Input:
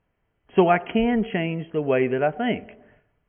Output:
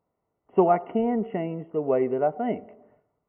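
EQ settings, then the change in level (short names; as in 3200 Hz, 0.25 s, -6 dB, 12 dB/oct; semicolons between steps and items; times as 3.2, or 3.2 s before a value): polynomial smoothing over 65 samples; HPF 300 Hz 6 dB/oct; 0.0 dB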